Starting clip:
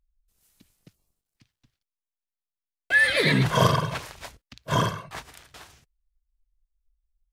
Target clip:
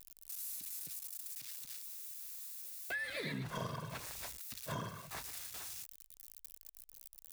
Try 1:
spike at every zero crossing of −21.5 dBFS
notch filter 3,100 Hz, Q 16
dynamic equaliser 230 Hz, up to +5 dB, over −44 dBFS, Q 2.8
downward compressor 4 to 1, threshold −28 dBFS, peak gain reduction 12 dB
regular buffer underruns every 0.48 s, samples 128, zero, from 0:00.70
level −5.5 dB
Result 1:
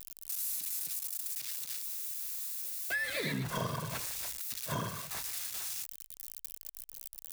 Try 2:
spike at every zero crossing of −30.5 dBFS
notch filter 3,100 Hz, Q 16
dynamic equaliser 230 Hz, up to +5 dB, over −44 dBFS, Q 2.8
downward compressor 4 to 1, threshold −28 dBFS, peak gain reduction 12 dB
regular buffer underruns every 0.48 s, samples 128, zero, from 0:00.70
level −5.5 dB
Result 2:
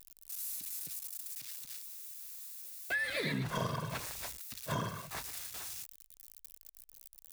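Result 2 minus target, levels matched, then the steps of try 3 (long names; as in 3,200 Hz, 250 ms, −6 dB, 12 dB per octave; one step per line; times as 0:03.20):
downward compressor: peak gain reduction −5.5 dB
spike at every zero crossing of −30.5 dBFS
notch filter 3,100 Hz, Q 16
dynamic equaliser 230 Hz, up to +5 dB, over −44 dBFS, Q 2.8
downward compressor 4 to 1, threshold −35.5 dBFS, peak gain reduction 18 dB
regular buffer underruns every 0.48 s, samples 128, zero, from 0:00.70
level −5.5 dB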